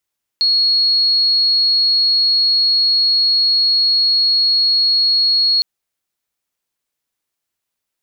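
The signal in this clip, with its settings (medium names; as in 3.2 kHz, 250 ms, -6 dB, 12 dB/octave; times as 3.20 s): tone sine 4.32 kHz -11 dBFS 5.21 s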